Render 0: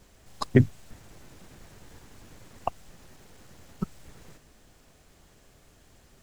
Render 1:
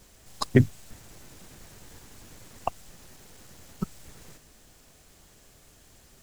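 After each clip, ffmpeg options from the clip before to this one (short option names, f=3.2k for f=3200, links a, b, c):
-af "highshelf=f=4.1k:g=8"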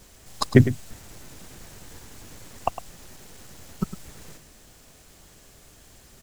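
-af "aecho=1:1:106:0.237,volume=4dB"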